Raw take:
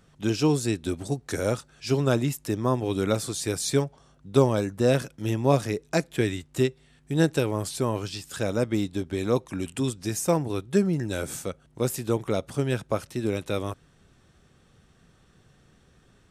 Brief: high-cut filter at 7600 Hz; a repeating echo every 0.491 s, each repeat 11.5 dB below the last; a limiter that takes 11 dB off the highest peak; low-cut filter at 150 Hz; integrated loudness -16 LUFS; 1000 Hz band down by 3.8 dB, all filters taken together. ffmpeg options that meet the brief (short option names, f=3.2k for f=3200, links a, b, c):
-af "highpass=150,lowpass=7.6k,equalizer=f=1k:t=o:g=-5,alimiter=limit=-18.5dB:level=0:latency=1,aecho=1:1:491|982|1473:0.266|0.0718|0.0194,volume=15dB"